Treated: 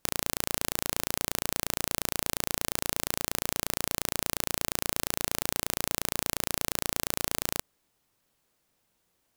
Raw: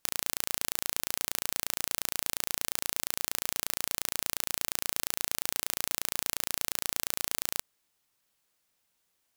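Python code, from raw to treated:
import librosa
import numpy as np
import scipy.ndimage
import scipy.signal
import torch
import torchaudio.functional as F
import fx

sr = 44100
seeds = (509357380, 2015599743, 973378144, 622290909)

y = fx.tilt_shelf(x, sr, db=5.0, hz=900.0)
y = F.gain(torch.from_numpy(y), 5.5).numpy()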